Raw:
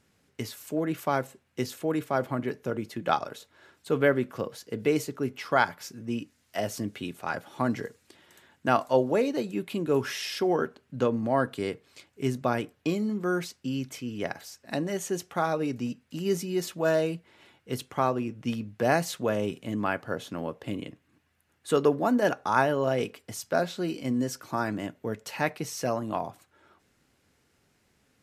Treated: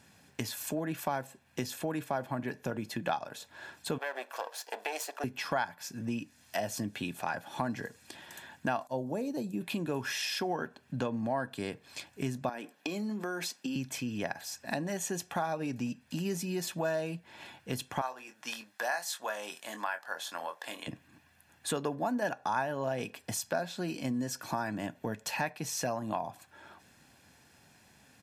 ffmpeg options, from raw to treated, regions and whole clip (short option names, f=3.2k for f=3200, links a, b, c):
-filter_complex "[0:a]asettb=1/sr,asplit=3[a][b][c];[a]atrim=end=3.984[d];[b]atrim=start=3.98:end=5.24,asetpts=PTS-STARTPTS,afade=t=in:d=0.004:c=qsin,afade=t=out:st=1.256:d=0.004:c=qsin,aeval=exprs='if(lt(val(0),0),0.251*val(0),val(0))':c=same,highpass=f=480:w=0.5412,highpass=f=480:w=1.3066,acompressor=threshold=-31dB:ratio=3:attack=3.2:release=140:knee=1:detection=peak[e];[c]atrim=start=5.236[f];[d][e]acrossfade=d=0.004:c1=hsin:c2=qsin[g];[g][f]acrossfade=d=0.004:c1=qsin:c2=hsin,asettb=1/sr,asplit=3[h][i][j];[h]atrim=end=8.874[k];[i]atrim=start=8.87:end=9.61,asetpts=PTS-STARTPTS,afade=t=in:d=0.004:c=qsin,afade=t=out:st=0.736:d=0.004:c=qsin,agate=range=-33dB:threshold=-37dB:ratio=3:release=100:detection=peak,equalizer=f=2k:t=o:w=2.9:g=-14.5,acompressor=mode=upward:threshold=-42dB:ratio=2.5:attack=3.2:release=140:knee=2.83:detection=peak[l];[j]atrim=start=9.606[m];[k][l]acrossfade=d=0.004:c1=hsin:c2=qsin[n];[n][m]acrossfade=d=0.004:c1=qsin:c2=hsin,asettb=1/sr,asplit=3[o][p][q];[o]atrim=end=12.494[r];[p]atrim=start=12.49:end=13.76,asetpts=PTS-STARTPTS,afade=t=in:d=0.004:c=qsin,afade=t=out:st=1.266:d=0.004:c=qsin,highpass=f=220:w=0.5412,highpass=f=220:w=1.3066,acompressor=threshold=-33dB:ratio=3:attack=3.2:release=140:knee=1:detection=peak[s];[q]atrim=start=13.756[t];[r][s]acrossfade=d=0.004:c1=hsin:c2=qsin[u];[u][t]acrossfade=d=0.004:c1=qsin:c2=hsin,asettb=1/sr,asplit=3[v][w][x];[v]atrim=end=18.014[y];[w]atrim=start=18.01:end=20.87,asetpts=PTS-STARTPTS,afade=t=in:d=0.004:c=qsin,afade=t=out:st=2.856:d=0.004:c=qsin,highpass=1k,equalizer=f=2.6k:t=o:w=0.58:g=-6.5,asplit=2[z][aa];[aa]adelay=23,volume=-8dB[ab];[z][ab]amix=inputs=2:normalize=0,atrim=end_sample=126126[ac];[x]atrim=start=20.866[ad];[y][ac]acrossfade=d=0.004:c1=hsin:c2=qsin[ae];[ae][ad]acrossfade=d=0.004:c1=qsin:c2=hsin,highpass=f=150:p=1,aecho=1:1:1.2:0.5,acompressor=threshold=-42dB:ratio=3,volume=7.5dB"